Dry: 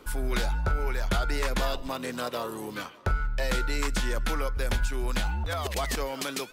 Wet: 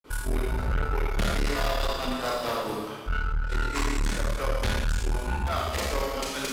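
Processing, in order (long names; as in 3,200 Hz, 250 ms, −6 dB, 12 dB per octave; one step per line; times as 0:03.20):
granular cloud 206 ms, grains 4.6 per second, pitch spread up and down by 0 semitones
four-comb reverb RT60 1.3 s, combs from 28 ms, DRR −3 dB
tube saturation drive 28 dB, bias 0.55
level +6.5 dB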